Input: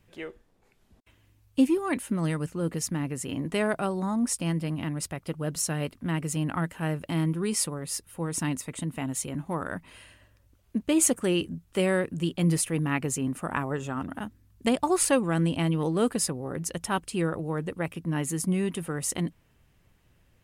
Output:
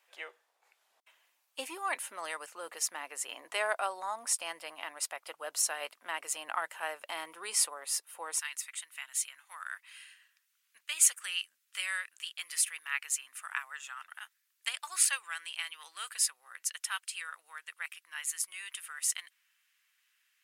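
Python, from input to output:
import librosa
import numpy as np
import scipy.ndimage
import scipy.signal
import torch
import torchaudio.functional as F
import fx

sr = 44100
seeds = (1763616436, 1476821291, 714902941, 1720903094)

y = fx.highpass(x, sr, hz=fx.steps((0.0, 680.0), (8.39, 1500.0)), slope=24)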